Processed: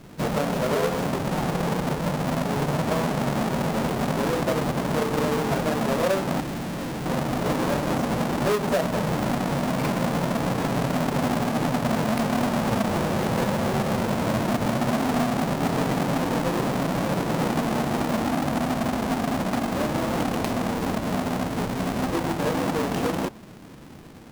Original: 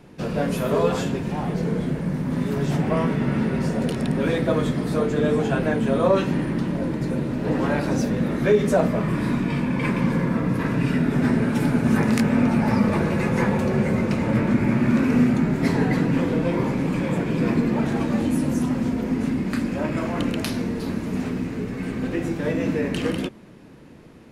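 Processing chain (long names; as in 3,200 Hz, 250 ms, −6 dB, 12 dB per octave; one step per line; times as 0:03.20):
each half-wave held at its own peak
dynamic equaliser 720 Hz, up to +7 dB, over −31 dBFS, Q 0.73
downward compressor 3 to 1, threshold −21 dBFS, peak gain reduction 11.5 dB
0:06.40–0:07.06: hard clipping −27 dBFS, distortion −22 dB
level −2.5 dB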